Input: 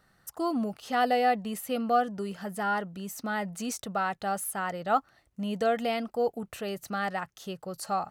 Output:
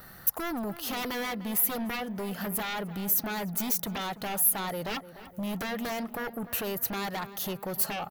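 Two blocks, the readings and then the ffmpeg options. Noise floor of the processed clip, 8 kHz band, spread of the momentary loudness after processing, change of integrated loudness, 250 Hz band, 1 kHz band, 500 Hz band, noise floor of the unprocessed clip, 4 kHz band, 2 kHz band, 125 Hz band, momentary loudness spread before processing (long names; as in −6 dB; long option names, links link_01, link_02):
−49 dBFS, +8.0 dB, 9 LU, +0.5 dB, −1.0 dB, −7.5 dB, −6.0 dB, −69 dBFS, +3.5 dB, −2.0 dB, +2.0 dB, 11 LU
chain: -filter_complex "[0:a]acompressor=threshold=-50dB:ratio=2,aeval=exprs='0.0355*(cos(1*acos(clip(val(0)/0.0355,-1,1)))-cos(1*PI/2))+0.00158*(cos(4*acos(clip(val(0)/0.0355,-1,1)))-cos(4*PI/2))':channel_layout=same,aeval=exprs='0.0316*sin(PI/2*3.55*val(0)/0.0316)':channel_layout=same,aexciter=amount=9.1:drive=1.5:freq=11000,asplit=2[link_01][link_02];[link_02]adelay=299,lowpass=frequency=2300:poles=1,volume=-14dB,asplit=2[link_03][link_04];[link_04]adelay=299,lowpass=frequency=2300:poles=1,volume=0.55,asplit=2[link_05][link_06];[link_06]adelay=299,lowpass=frequency=2300:poles=1,volume=0.55,asplit=2[link_07][link_08];[link_08]adelay=299,lowpass=frequency=2300:poles=1,volume=0.55,asplit=2[link_09][link_10];[link_10]adelay=299,lowpass=frequency=2300:poles=1,volume=0.55,asplit=2[link_11][link_12];[link_12]adelay=299,lowpass=frequency=2300:poles=1,volume=0.55[link_13];[link_03][link_05][link_07][link_09][link_11][link_13]amix=inputs=6:normalize=0[link_14];[link_01][link_14]amix=inputs=2:normalize=0"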